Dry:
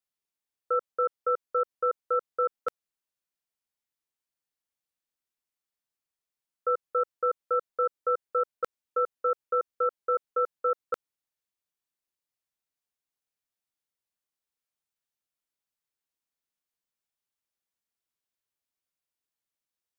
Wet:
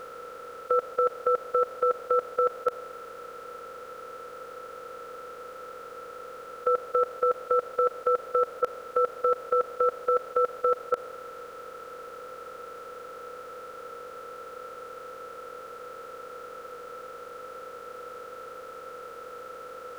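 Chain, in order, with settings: per-bin compression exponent 0.2; dynamic EQ 630 Hz, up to +6 dB, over -44 dBFS, Q 2.3

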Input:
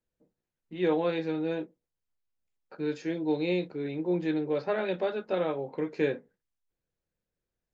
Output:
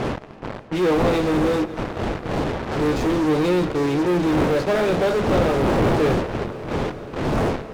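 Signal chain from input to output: wind noise 520 Hz -35 dBFS; dynamic EQ 2000 Hz, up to -4 dB, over -50 dBFS, Q 1.2; in parallel at -7.5 dB: fuzz box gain 50 dB, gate -45 dBFS; on the sum: LPF 3700 Hz 6 dB/oct; multi-head echo 0.276 s, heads all three, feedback 69%, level -24 dB; reverb RT60 5.1 s, pre-delay 0.11 s, DRR 16 dB

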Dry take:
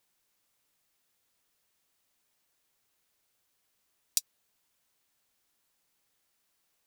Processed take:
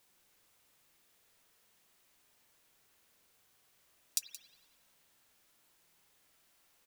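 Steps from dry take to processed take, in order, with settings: limiter -13 dBFS, peak gain reduction 10.5 dB; echo 0.174 s -16 dB; spring tank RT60 1.3 s, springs 47 ms, chirp 50 ms, DRR 1.5 dB; gain +5 dB

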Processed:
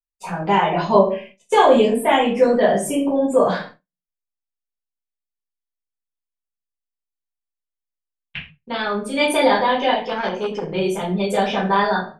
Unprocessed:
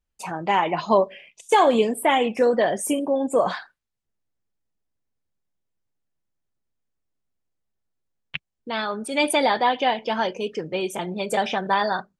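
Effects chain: low shelf 81 Hz +7.5 dB; shoebox room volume 32 m³, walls mixed, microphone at 1.1 m; expander -30 dBFS; high shelf 10000 Hz -3.5 dB; 10.07–10.74 core saturation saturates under 920 Hz; gain -4 dB

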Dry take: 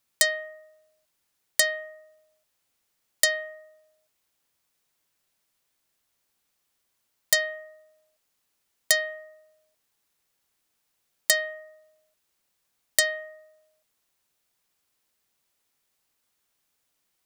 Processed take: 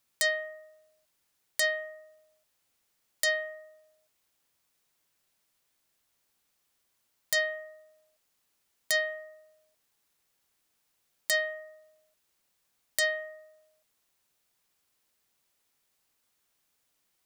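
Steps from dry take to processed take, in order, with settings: limiter -13.5 dBFS, peak gain reduction 10.5 dB

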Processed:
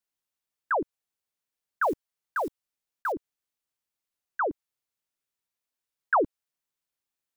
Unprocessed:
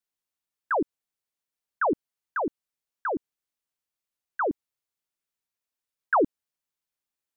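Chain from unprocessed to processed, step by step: 1.82–3.14 block floating point 5-bit; dynamic EQ 230 Hz, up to -8 dB, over -42 dBFS, Q 1.1

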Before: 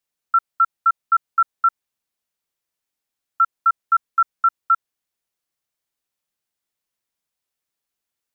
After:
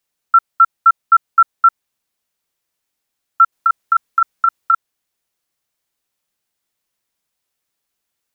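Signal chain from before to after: 3.52–4.74 negative-ratio compressor -17 dBFS, ratio -0.5; gain +6.5 dB

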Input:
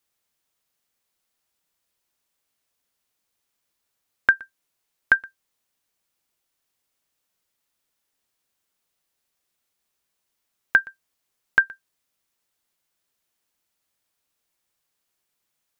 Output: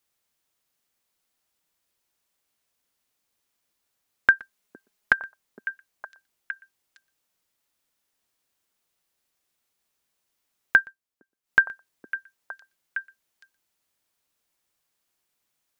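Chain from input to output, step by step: 4.38–5.18 comb 4.8 ms, depth 62%; delay with a stepping band-pass 0.461 s, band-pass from 300 Hz, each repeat 1.4 oct, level -6 dB; 10.79–11.59 dip -12.5 dB, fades 0.17 s

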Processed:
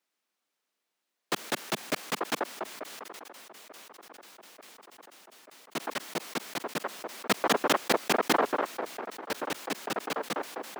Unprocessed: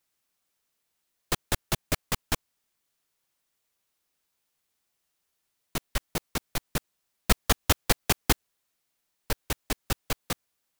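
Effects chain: HPF 210 Hz 24 dB/oct; high shelf 6500 Hz -11 dB; band-limited delay 0.888 s, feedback 77%, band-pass 690 Hz, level -15.5 dB; sustainer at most 21 dB/s

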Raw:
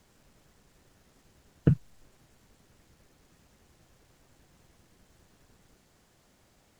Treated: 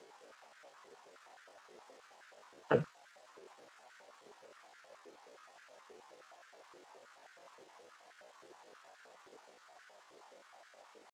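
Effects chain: tempo 0.61×; air absorption 57 m; stepped high-pass 9.5 Hz 420–1500 Hz; gain +4.5 dB

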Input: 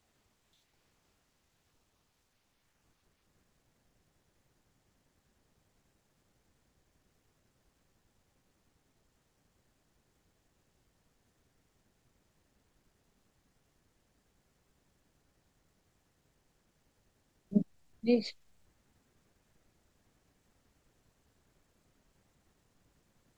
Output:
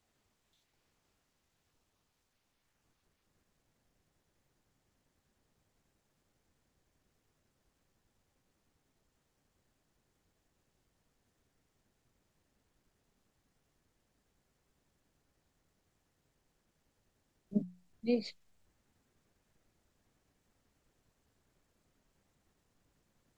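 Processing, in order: notches 60/120/180 Hz; gain -4 dB

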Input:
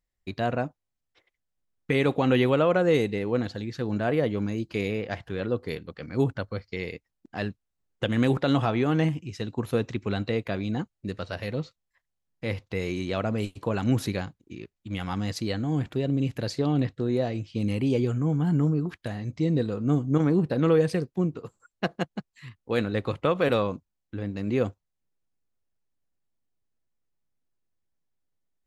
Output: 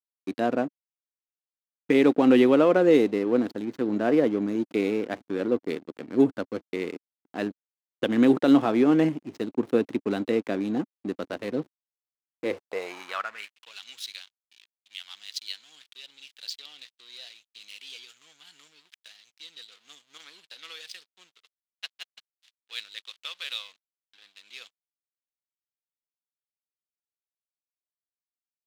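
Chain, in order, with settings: backlash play -33.5 dBFS; high-pass sweep 280 Hz -> 3500 Hz, 12.35–13.73

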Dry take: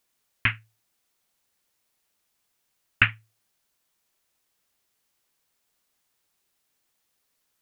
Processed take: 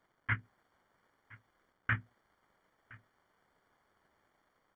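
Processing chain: low shelf 210 Hz -6 dB; notches 60/120/180/240/300/360/420/480 Hz; reverse; compressor, threshold -31 dBFS, peak gain reduction 17.5 dB; reverse; limiter -23.5 dBFS, peak gain reduction 5 dB; AGC gain up to 4 dB; tempo 1.6×; crackle 400/s -60 dBFS; polynomial smoothing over 41 samples; on a send: echo 1.016 s -22.5 dB; on the sum: gain +6 dB

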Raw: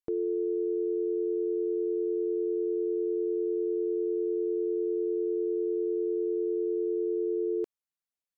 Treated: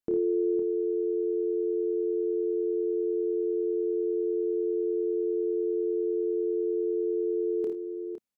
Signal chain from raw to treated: bell 220 Hz +8.5 dB 1.1 oct; doubler 28 ms -6.5 dB; tapped delay 55/76/510 ms -6/-13/-9.5 dB

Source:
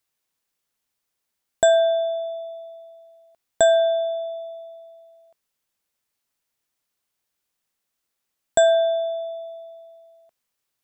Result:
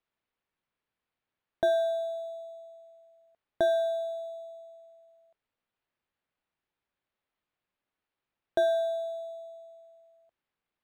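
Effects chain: decimation joined by straight lines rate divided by 6×; gain -9 dB

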